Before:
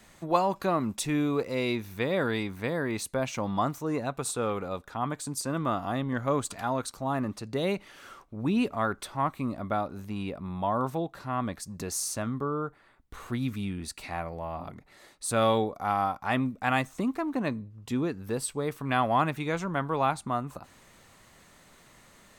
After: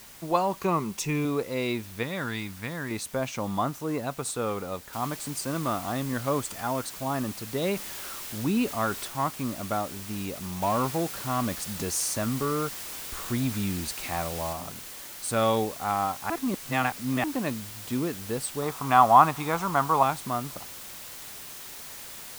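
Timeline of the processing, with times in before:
0:00.59–0:01.25: EQ curve with evenly spaced ripples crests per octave 0.77, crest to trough 10 dB
0:02.03–0:02.91: parametric band 470 Hz −11 dB 1.2 octaves
0:04.93: noise floor change −49 dB −42 dB
0:06.41–0:06.84: notch filter 3,900 Hz
0:07.61–0:09.08: converter with a step at zero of −40.5 dBFS
0:10.62–0:14.53: leveller curve on the samples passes 1
0:16.30–0:17.24: reverse
0:18.62–0:20.03: flat-topped bell 970 Hz +10 dB 1.1 octaves

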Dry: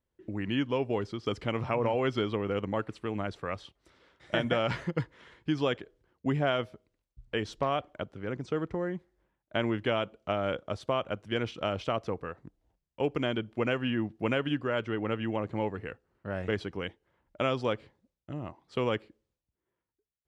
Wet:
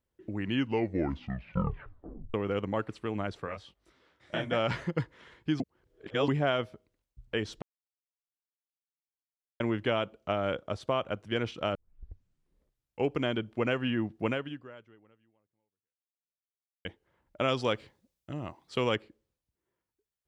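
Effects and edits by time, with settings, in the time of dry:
0:00.54: tape stop 1.80 s
0:03.45–0:04.52: micro pitch shift up and down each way 36 cents → 49 cents
0:05.60–0:06.28: reverse
0:07.62–0:09.60: silence
0:11.75: tape start 1.35 s
0:14.26–0:16.85: fade out exponential
0:17.48–0:18.96: high-shelf EQ 2,700 Hz +9 dB

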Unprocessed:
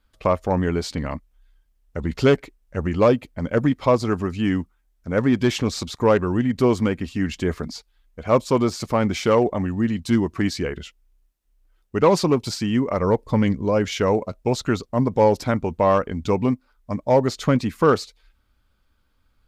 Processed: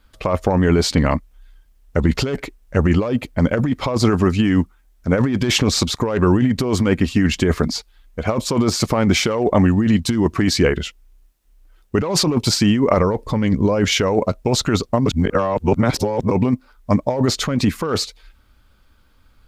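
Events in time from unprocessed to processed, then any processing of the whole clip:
0:15.06–0:16.31: reverse
whole clip: compressor whose output falls as the input rises −23 dBFS, ratio −1; level +7 dB

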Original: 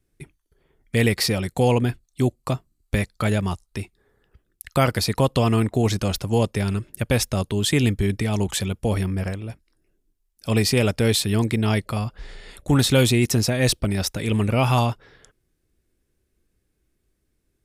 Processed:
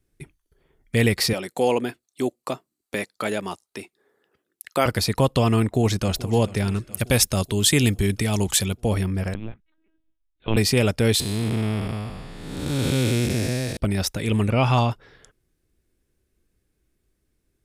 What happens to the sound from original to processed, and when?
0:01.33–0:04.86: Chebyshev high-pass filter 330 Hz
0:05.61–0:06.26: delay throw 430 ms, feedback 65%, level −17.5 dB
0:06.92–0:08.73: high-shelf EQ 4,200 Hz +9 dB
0:09.34–0:10.57: linear-prediction vocoder at 8 kHz pitch kept
0:11.20–0:13.77: spectrum smeared in time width 462 ms
0:14.50–0:14.91: low-pass filter 6,000 Hz

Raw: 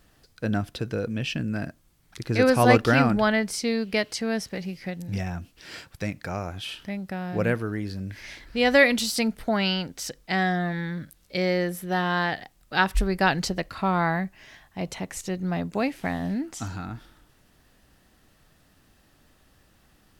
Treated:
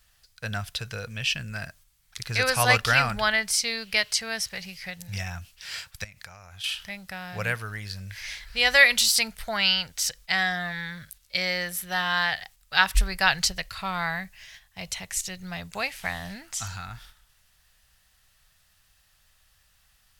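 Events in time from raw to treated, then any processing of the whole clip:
0:06.04–0:06.64: downward compressor 10 to 1, threshold −40 dBFS
0:11.44–0:12.25: floating-point word with a short mantissa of 8 bits
0:13.46–0:15.71: parametric band 1,000 Hz −4.5 dB 1.8 octaves
whole clip: noise gate −50 dBFS, range −6 dB; guitar amp tone stack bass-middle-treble 10-0-10; level +8.5 dB

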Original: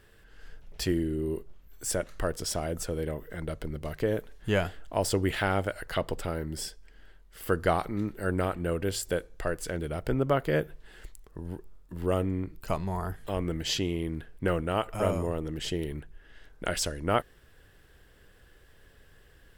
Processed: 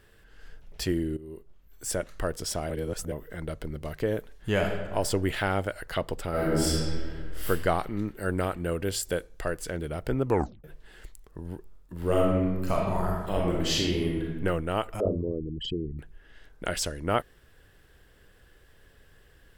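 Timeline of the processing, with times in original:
0:01.17–0:01.97: fade in, from −16 dB
0:02.70–0:03.12: reverse
0:04.51–0:04.94: thrown reverb, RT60 1.3 s, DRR 2.5 dB
0:06.30–0:07.47: thrown reverb, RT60 1.9 s, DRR −10 dB
0:08.17–0:09.57: parametric band 12,000 Hz +3 dB 2.8 octaves
0:10.24: tape stop 0.40 s
0:11.96–0:14.35: thrown reverb, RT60 1.2 s, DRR −2.5 dB
0:15.00–0:15.99: spectral envelope exaggerated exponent 3

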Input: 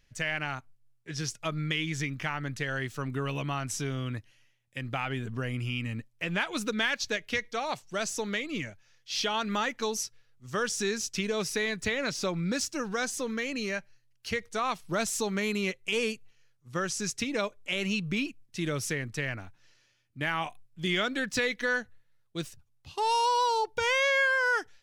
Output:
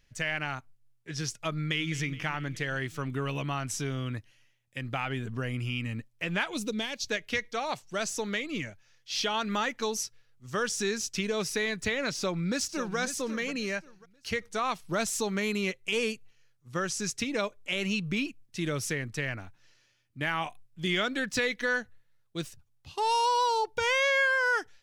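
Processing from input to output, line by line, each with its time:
0:01.52–0:01.92: delay throw 210 ms, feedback 70%, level −14.5 dB
0:06.54–0:07.09: parametric band 1,500 Hz −14.5 dB 1.1 octaves
0:12.14–0:12.97: delay throw 540 ms, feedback 25%, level −11.5 dB

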